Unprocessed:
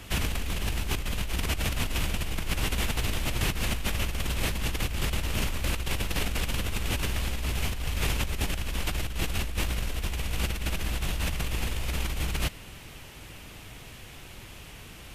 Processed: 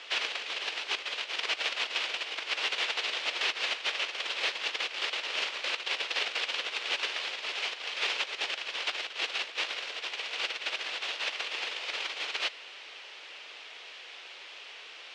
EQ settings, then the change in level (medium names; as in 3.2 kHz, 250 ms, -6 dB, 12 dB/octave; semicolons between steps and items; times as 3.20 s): Chebyshev high-pass 440 Hz, order 3; low-pass 4.5 kHz 24 dB/octave; tilt EQ +3 dB/octave; 0.0 dB